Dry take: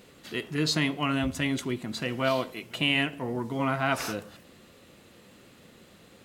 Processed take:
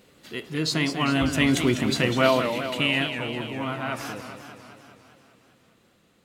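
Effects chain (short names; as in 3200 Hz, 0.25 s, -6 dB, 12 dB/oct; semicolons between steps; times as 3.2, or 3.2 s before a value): Doppler pass-by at 1.82, 5 m/s, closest 2.4 m; warbling echo 0.2 s, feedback 65%, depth 201 cents, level -8.5 dB; gain +9 dB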